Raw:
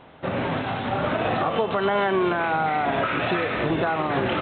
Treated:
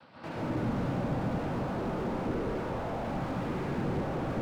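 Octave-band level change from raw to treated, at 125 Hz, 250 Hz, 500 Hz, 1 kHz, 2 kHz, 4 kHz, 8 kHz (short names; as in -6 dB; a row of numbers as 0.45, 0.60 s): -2.0 dB, -5.0 dB, -10.5 dB, -13.5 dB, -16.5 dB, -16.5 dB, n/a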